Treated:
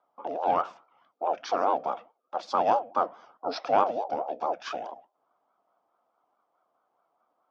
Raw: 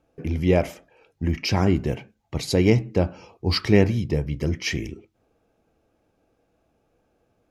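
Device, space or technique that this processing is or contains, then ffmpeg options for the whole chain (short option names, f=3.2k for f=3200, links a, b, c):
voice changer toy: -af "aeval=exprs='val(0)*sin(2*PI*530*n/s+530*0.35/4.7*sin(2*PI*4.7*n/s))':c=same,highpass=400,equalizer=f=410:t=q:w=4:g=-4,equalizer=f=710:t=q:w=4:g=8,equalizer=f=1.3k:t=q:w=4:g=8,equalizer=f=1.9k:t=q:w=4:g=-10,equalizer=f=2.8k:t=q:w=4:g=-6,equalizer=f=4.1k:t=q:w=4:g=-6,lowpass=f=4.8k:w=0.5412,lowpass=f=4.8k:w=1.3066,volume=-4.5dB"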